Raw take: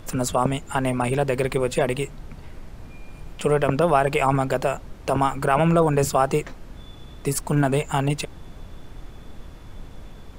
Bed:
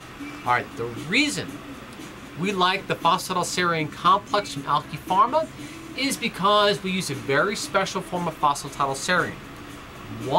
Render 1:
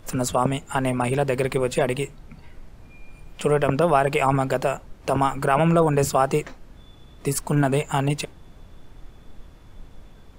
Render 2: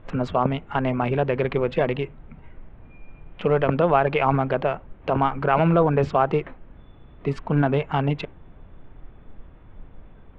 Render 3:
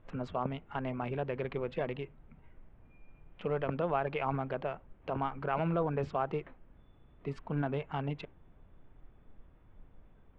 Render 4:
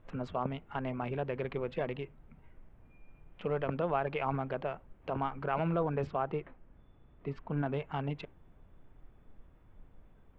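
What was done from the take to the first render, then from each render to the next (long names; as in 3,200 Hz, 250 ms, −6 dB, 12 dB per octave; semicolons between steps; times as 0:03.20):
noise reduction from a noise print 6 dB
adaptive Wiener filter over 9 samples; low-pass filter 3,600 Hz 24 dB per octave
level −13 dB
0:06.07–0:07.66: high-frequency loss of the air 140 metres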